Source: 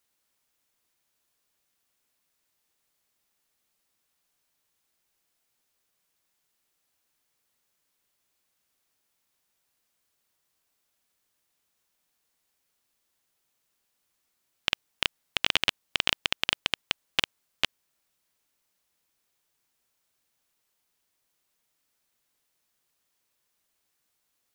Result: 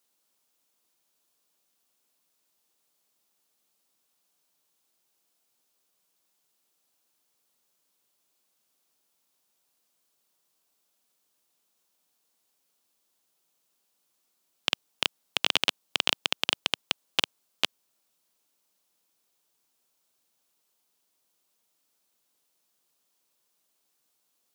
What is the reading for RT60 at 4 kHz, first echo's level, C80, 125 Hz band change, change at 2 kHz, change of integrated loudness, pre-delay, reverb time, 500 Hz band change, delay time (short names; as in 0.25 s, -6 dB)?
none, none, none, -3.5 dB, -1.5 dB, +0.5 dB, none, none, +2.0 dB, none